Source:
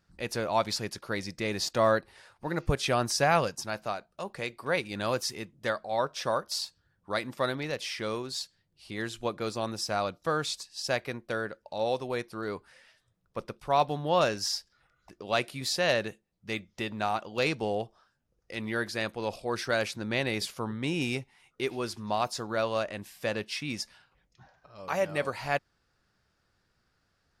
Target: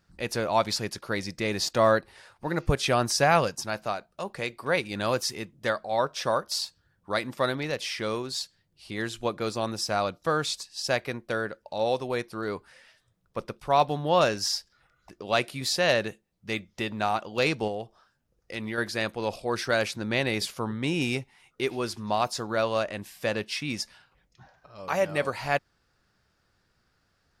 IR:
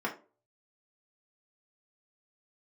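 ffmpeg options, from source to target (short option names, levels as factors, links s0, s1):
-filter_complex "[0:a]asettb=1/sr,asplit=3[s0][s1][s2];[s0]atrim=end=17.674[s3];[s1]atrim=start=17.67:end=18.78,asetpts=PTS-STARTPTS,afade=t=in:d=0.004:c=qsin,afade=t=out:st=1.106:d=0.004:c=qsin,acompressor=threshold=0.0224:ratio=4[s4];[s2]atrim=start=18.776[s5];[s3][s4]acrossfade=d=0.004:c1=hsin:c2=qsin[s6];[s6][s5]acrossfade=d=0.004:c1=qsin:c2=hsin,volume=1.41"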